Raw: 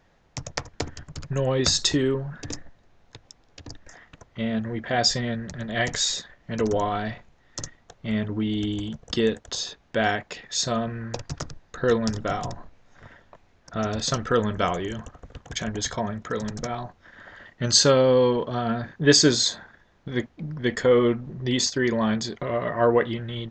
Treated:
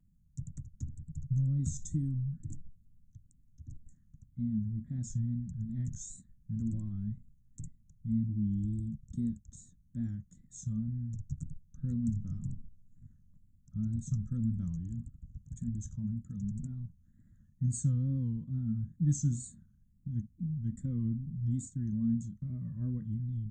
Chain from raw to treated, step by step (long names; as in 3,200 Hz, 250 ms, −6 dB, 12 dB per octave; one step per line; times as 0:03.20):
harmonic and percussive parts rebalanced percussive −3 dB
inverse Chebyshev band-stop filter 390–5,100 Hz, stop band 40 dB
tape wow and flutter 110 cents
level −1 dB